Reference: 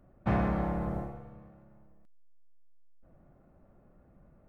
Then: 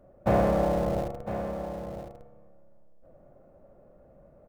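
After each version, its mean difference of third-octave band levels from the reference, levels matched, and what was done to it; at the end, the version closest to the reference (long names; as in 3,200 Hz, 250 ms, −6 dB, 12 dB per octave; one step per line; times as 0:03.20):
5.5 dB: parametric band 550 Hz +13.5 dB 0.82 octaves
in parallel at −8 dB: comparator with hysteresis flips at −31.5 dBFS
on the sum: single-tap delay 1,005 ms −10 dB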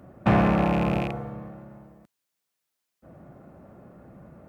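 3.0 dB: loose part that buzzes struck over −39 dBFS, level −34 dBFS
high-pass filter 98 Hz 12 dB per octave
in parallel at +2.5 dB: downward compressor, threshold −40 dBFS, peak gain reduction 14.5 dB
on the sum: level +7 dB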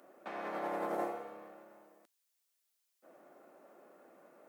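11.0 dB: high-shelf EQ 2,800 Hz +9.5 dB
compressor whose output falls as the input rises −35 dBFS, ratio −1
high-pass filter 330 Hz 24 dB per octave
level +2.5 dB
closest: second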